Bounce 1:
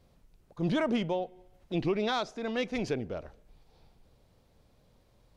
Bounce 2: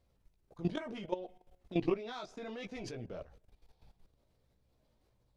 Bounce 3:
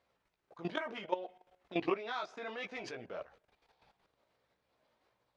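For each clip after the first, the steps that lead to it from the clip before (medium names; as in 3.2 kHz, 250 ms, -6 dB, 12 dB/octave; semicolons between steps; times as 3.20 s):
chorus voices 4, 0.74 Hz, delay 16 ms, depth 1.7 ms; level held to a coarse grid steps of 15 dB; trim +2 dB
band-pass filter 1.5 kHz, Q 0.78; trim +8 dB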